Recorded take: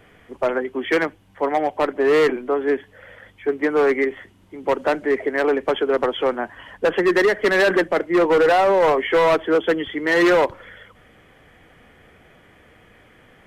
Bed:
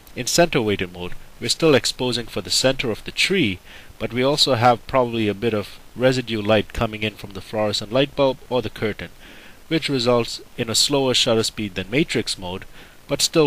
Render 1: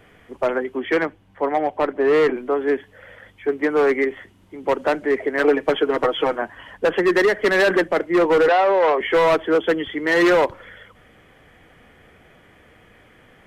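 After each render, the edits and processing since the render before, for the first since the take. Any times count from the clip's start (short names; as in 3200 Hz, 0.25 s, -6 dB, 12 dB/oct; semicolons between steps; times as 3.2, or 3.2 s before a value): 0.79–2.36 high shelf 4100 Hz -9.5 dB; 5.38–6.42 comb 6.4 ms, depth 79%; 8.48–9.01 three-band isolator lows -18 dB, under 280 Hz, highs -19 dB, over 4800 Hz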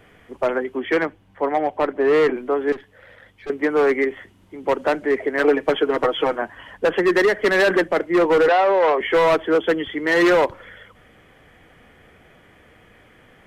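2.72–3.5 tube stage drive 30 dB, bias 0.65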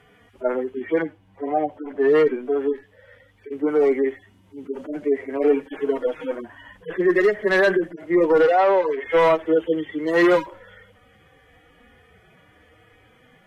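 median-filter separation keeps harmonic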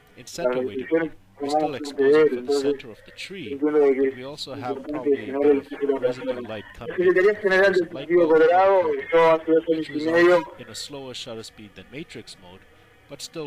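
add bed -17 dB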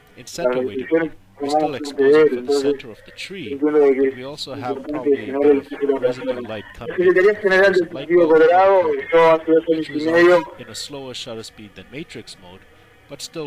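gain +4 dB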